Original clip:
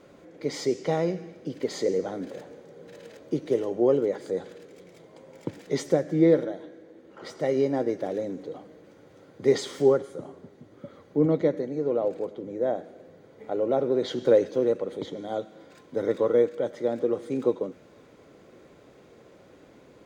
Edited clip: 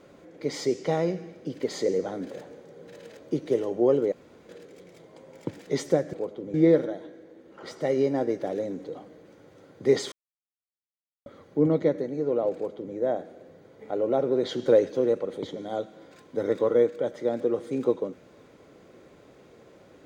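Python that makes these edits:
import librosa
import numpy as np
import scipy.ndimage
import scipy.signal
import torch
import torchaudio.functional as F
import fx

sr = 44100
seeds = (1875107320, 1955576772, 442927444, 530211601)

y = fx.edit(x, sr, fx.room_tone_fill(start_s=4.12, length_s=0.37),
    fx.silence(start_s=9.71, length_s=1.14),
    fx.duplicate(start_s=12.13, length_s=0.41, to_s=6.13), tone=tone)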